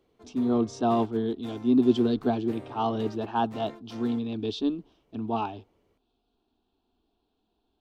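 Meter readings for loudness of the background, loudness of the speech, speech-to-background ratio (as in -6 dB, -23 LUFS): -46.5 LUFS, -28.0 LUFS, 18.5 dB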